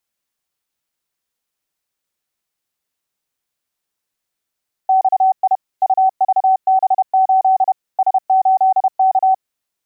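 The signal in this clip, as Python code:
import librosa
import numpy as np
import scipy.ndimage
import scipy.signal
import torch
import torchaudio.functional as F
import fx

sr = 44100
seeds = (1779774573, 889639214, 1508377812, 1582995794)

y = fx.morse(sr, text='XI UVB8 S8K', wpm=31, hz=760.0, level_db=-9.0)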